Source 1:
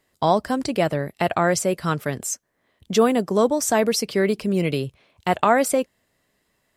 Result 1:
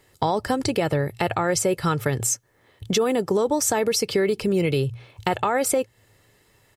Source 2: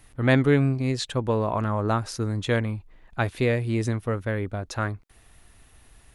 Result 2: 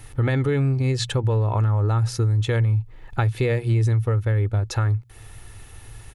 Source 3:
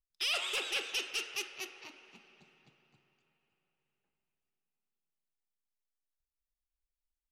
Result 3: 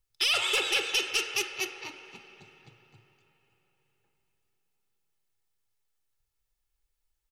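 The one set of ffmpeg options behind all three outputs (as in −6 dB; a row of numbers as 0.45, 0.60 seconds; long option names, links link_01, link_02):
-af "equalizer=frequency=110:width=3.2:gain=14,bandreject=frequency=60:width_type=h:width=6,bandreject=frequency=120:width_type=h:width=6,aecho=1:1:2.3:0.41,alimiter=limit=-13dB:level=0:latency=1:release=51,acompressor=threshold=-31dB:ratio=2.5,volume=8.5dB"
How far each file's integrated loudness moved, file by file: −1.5, +3.0, +8.0 LU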